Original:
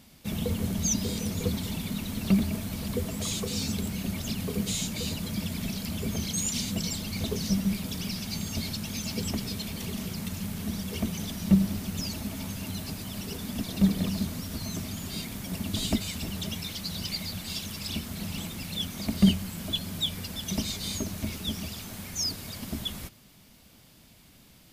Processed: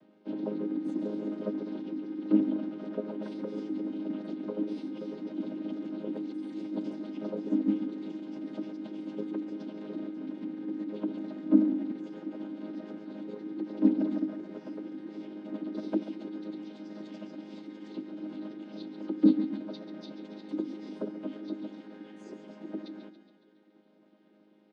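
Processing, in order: vocoder on a held chord major triad, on G#3; on a send: feedback delay 139 ms, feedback 58%, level -11.5 dB; on the sum: formant shift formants +5 st; distance through air 350 m

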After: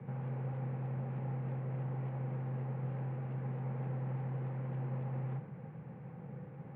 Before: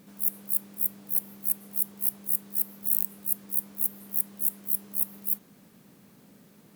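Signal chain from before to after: small resonant body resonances 220/570/860 Hz, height 13 dB, ringing for 35 ms; mistuned SSB -69 Hz 200–2400 Hz; three bands expanded up and down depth 40%; trim +3.5 dB

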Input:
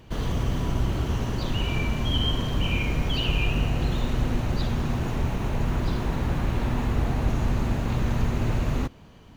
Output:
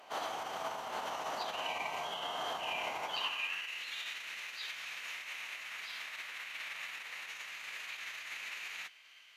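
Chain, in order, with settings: peak limiter -22 dBFS, peak gain reduction 10 dB; formant-preserving pitch shift -7 st; high-pass sweep 790 Hz -> 2.2 kHz, 3.09–3.72 s

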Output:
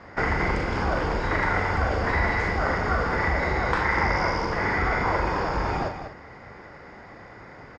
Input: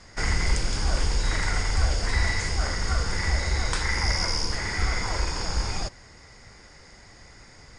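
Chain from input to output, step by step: low-pass 1.5 kHz 12 dB/octave; multi-tap echo 40/194/249 ms -8/-10/-17 dB; in parallel at -3 dB: peak limiter -20.5 dBFS, peak gain reduction 10 dB; on the sum: high-pass 240 Hz 6 dB/octave; trim +5.5 dB

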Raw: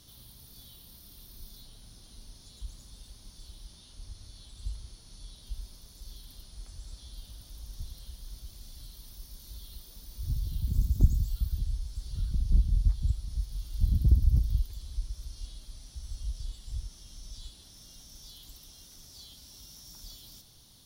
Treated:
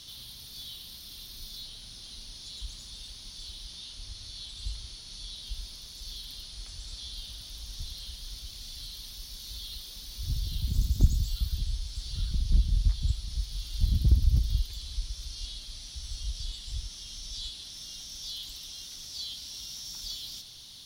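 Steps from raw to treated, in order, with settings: peaking EQ 3.6 kHz +14 dB 2.2 oct

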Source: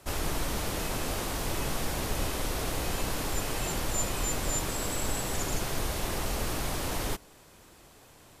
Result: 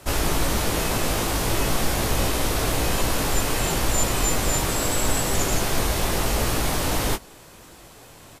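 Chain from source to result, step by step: doubling 18 ms -7 dB; trim +8 dB

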